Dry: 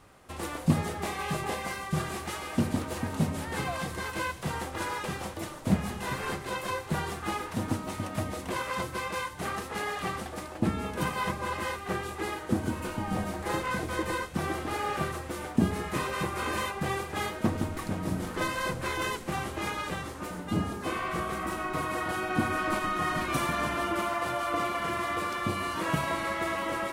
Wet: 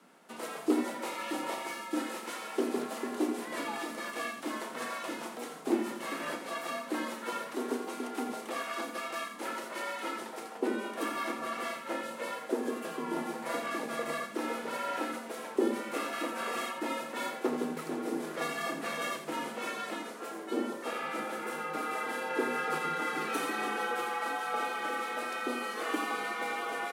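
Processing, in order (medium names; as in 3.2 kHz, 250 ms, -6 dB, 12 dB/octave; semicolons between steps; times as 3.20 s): loudspeakers at several distances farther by 11 m -11 dB, 29 m -9 dB; frequency shift +150 Hz; trim -4.5 dB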